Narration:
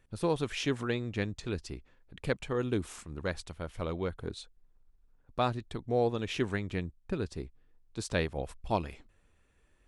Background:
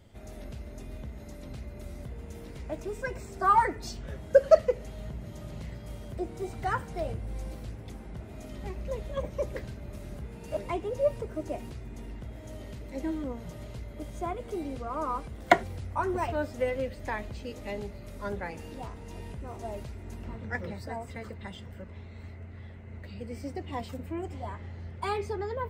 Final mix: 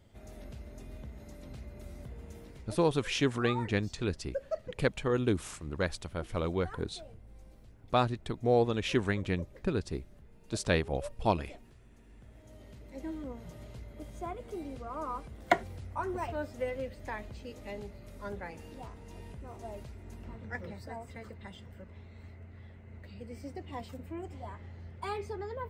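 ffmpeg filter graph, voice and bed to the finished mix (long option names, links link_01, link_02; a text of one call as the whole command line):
ffmpeg -i stem1.wav -i stem2.wav -filter_complex "[0:a]adelay=2550,volume=2.5dB[link_01];[1:a]volume=7dB,afade=type=out:start_time=2.3:duration=0.65:silence=0.237137,afade=type=in:start_time=12.02:duration=1.35:silence=0.266073[link_02];[link_01][link_02]amix=inputs=2:normalize=0" out.wav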